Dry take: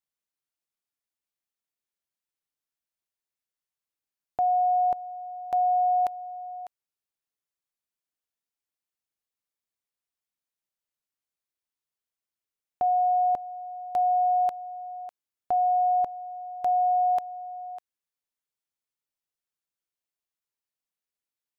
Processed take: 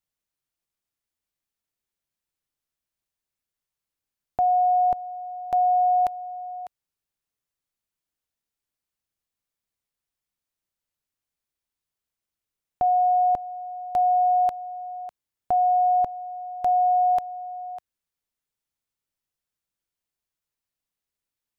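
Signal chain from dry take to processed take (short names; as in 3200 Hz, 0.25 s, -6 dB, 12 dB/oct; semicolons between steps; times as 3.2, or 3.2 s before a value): low shelf 160 Hz +10 dB; gain +2.5 dB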